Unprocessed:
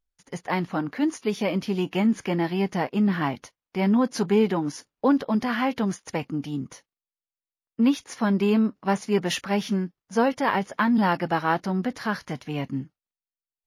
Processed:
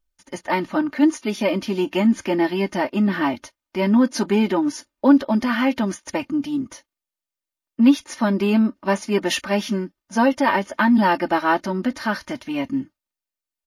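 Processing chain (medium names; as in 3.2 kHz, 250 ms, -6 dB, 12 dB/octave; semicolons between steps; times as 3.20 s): comb 3.3 ms, depth 84%; trim +2.5 dB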